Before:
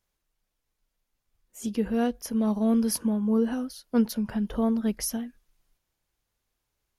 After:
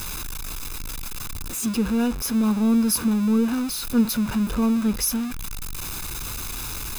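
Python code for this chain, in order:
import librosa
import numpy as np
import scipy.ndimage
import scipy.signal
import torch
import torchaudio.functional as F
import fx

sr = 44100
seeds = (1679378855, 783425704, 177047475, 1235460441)

y = x + 0.5 * 10.0 ** (-28.0 / 20.0) * np.sign(x)
y = fx.high_shelf(y, sr, hz=6800.0, db=4.0)
y = y + 0.56 * np.pad(y, (int(0.8 * sr / 1000.0), 0))[:len(y)]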